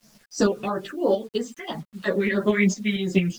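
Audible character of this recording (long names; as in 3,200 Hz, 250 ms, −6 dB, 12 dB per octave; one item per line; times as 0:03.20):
phaser sweep stages 4, 3 Hz, lowest notch 750–2,700 Hz
a quantiser's noise floor 10 bits, dither none
tremolo saw up 4.4 Hz, depth 55%
a shimmering, thickened sound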